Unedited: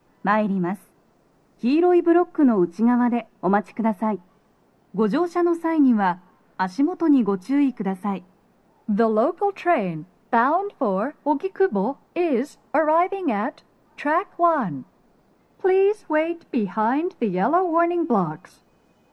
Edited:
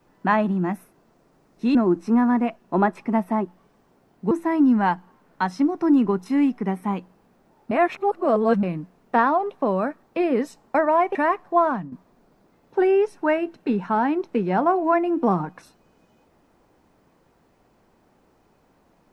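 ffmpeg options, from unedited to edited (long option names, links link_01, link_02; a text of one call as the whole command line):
ffmpeg -i in.wav -filter_complex "[0:a]asplit=8[link_01][link_02][link_03][link_04][link_05][link_06][link_07][link_08];[link_01]atrim=end=1.752[link_09];[link_02]atrim=start=2.458:end=5.022[link_10];[link_03]atrim=start=5.498:end=8.902[link_11];[link_04]atrim=start=8.898:end=9.822,asetpts=PTS-STARTPTS,areverse[link_12];[link_05]atrim=start=9.818:end=11.222[link_13];[link_06]atrim=start=12.028:end=13.152[link_14];[link_07]atrim=start=14.018:end=14.79,asetpts=PTS-STARTPTS,afade=type=out:start_time=0.522:duration=0.25:silence=0.237137[link_15];[link_08]atrim=start=14.79,asetpts=PTS-STARTPTS,afade=type=in:duration=0.004:curve=hsin:silence=0.237137[link_16];[link_09][link_10]acrossfade=duration=0.004:curve1=hsin:curve2=hsin[link_17];[link_17][link_11]acrossfade=duration=0.004:curve1=hsin:curve2=hsin[link_18];[link_18][link_12]acrossfade=duration=0.004:curve1=hsin:curve2=hsin[link_19];[link_19][link_13]acrossfade=duration=0.004:curve1=hsin:curve2=hsin[link_20];[link_20][link_14]acrossfade=duration=0.004:curve1=hsin:curve2=hsin[link_21];[link_15][link_16]concat=n=2:v=0:a=1[link_22];[link_21][link_22]acrossfade=duration=0.004:curve1=hsin:curve2=hsin" out.wav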